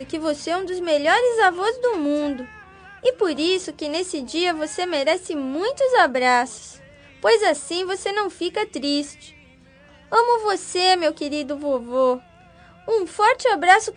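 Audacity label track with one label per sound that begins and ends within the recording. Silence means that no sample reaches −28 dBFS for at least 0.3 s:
3.040000	6.570000	sound
7.230000	9.100000	sound
10.120000	12.170000	sound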